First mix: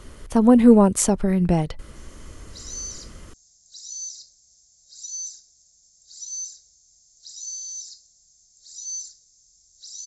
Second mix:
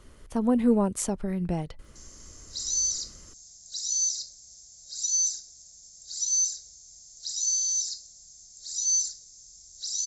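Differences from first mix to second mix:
speech -9.5 dB; background +7.5 dB

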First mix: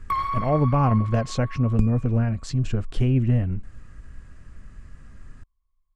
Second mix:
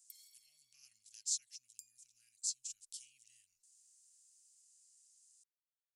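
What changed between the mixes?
speech +7.0 dB; second sound: add tilt +2.5 dB/oct; master: add inverse Chebyshev high-pass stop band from 1100 Hz, stop band 80 dB

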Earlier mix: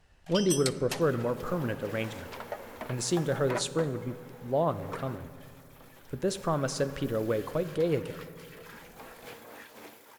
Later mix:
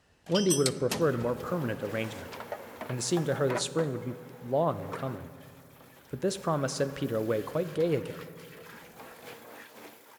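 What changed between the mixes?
first sound: remove rippled Chebyshev high-pass 540 Hz, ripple 3 dB; master: add HPF 80 Hz

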